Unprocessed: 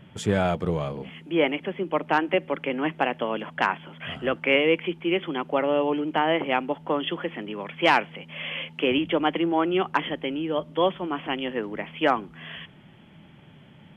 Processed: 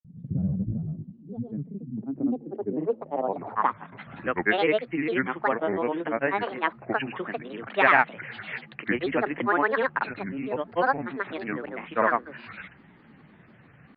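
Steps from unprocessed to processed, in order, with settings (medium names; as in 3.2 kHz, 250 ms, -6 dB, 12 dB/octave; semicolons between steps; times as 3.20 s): granulator, pitch spread up and down by 7 st; low-pass sweep 170 Hz -> 1.8 kHz, 1.79–4.17 s; trim -2.5 dB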